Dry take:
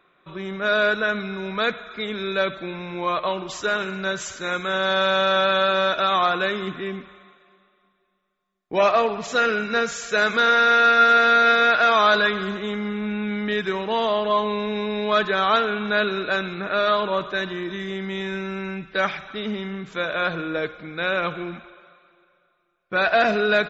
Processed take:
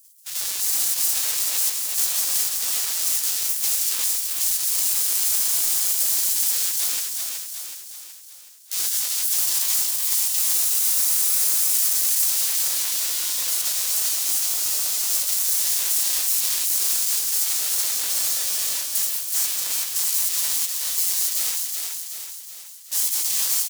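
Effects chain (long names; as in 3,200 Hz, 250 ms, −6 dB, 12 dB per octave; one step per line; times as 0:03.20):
each half-wave held at its own peak
gate on every frequency bin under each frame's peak −25 dB weak
high-shelf EQ 4,700 Hz +5 dB
downward compressor, threshold −26 dBFS, peak gain reduction 13.5 dB
brickwall limiter −22 dBFS, peak gain reduction 10 dB
bass and treble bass −11 dB, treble +12 dB
repeating echo 373 ms, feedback 53%, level −4.5 dB
level +3 dB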